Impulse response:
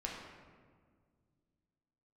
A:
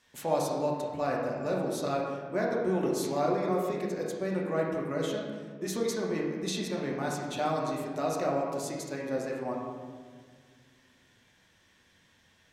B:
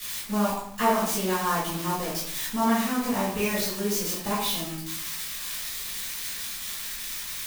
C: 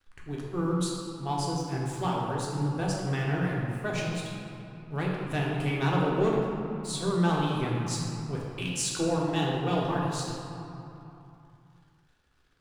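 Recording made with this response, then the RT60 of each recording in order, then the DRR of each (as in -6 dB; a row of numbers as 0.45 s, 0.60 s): A; 1.8 s, 0.70 s, 3.0 s; -3.0 dB, -12.0 dB, -4.0 dB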